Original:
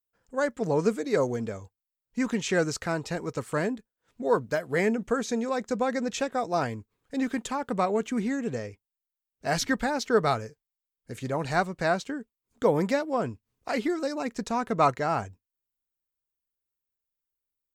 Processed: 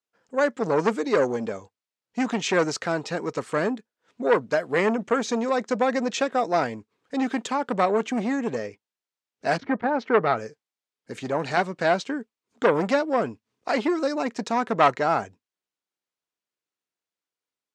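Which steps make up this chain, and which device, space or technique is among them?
public-address speaker with an overloaded transformer (saturating transformer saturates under 1,100 Hz; band-pass filter 210–6,100 Hz)
0:09.56–0:10.36: low-pass filter 1,100 Hz → 2,800 Hz 12 dB per octave
level +6 dB

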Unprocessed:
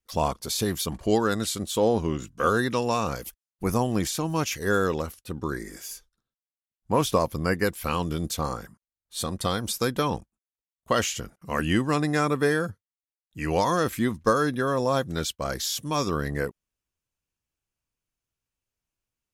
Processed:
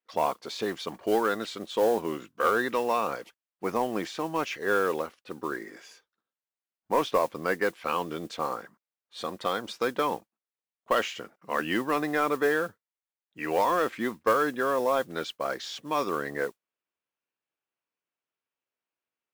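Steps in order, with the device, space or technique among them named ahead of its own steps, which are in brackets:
carbon microphone (band-pass filter 360–2,800 Hz; soft clipping −14 dBFS, distortion −20 dB; noise that follows the level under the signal 22 dB)
level +1 dB

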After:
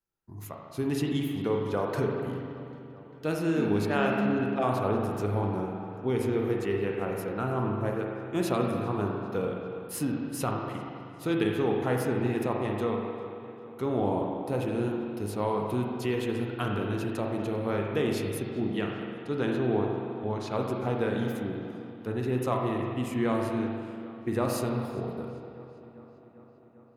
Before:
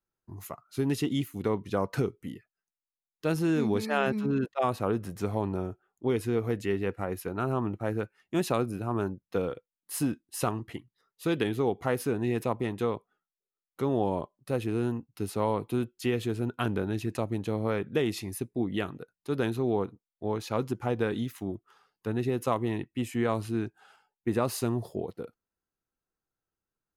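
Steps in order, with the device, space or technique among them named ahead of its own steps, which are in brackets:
0:18.64–0:20.53: low-pass filter 7,700 Hz 12 dB per octave
dub delay into a spring reverb (feedback echo with a low-pass in the loop 397 ms, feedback 74%, low-pass 4,600 Hz, level −19.5 dB; spring reverb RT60 2.2 s, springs 39/48 ms, chirp 55 ms, DRR 0 dB)
level −2 dB

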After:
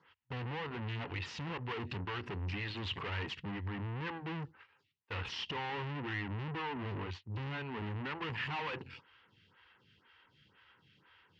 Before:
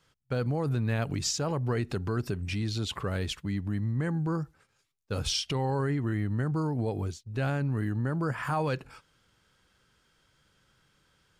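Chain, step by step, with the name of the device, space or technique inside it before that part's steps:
vibe pedal into a guitar amplifier (phaser with staggered stages 2 Hz; tube saturation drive 47 dB, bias 0.8; loudspeaker in its box 91–4,200 Hz, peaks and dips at 93 Hz +8 dB, 620 Hz −9 dB, 950 Hz +7 dB, 1,900 Hz +7 dB, 2,800 Hz +10 dB)
level +8 dB

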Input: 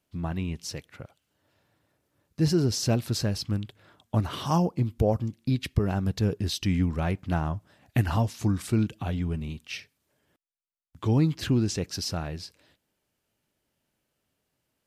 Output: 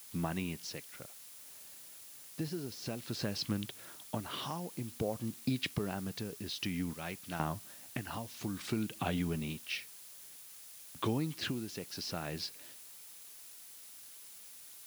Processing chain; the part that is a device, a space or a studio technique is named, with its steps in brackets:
0:06.93–0:07.40: first-order pre-emphasis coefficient 0.8
de-essing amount 75%
medium wave at night (band-pass filter 170–3,800 Hz; downward compressor, threshold −31 dBFS, peak gain reduction 12 dB; amplitude tremolo 0.55 Hz, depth 61%; steady tone 10,000 Hz −70 dBFS; white noise bed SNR 21 dB)
high-shelf EQ 2,900 Hz +10 dB
level +1.5 dB

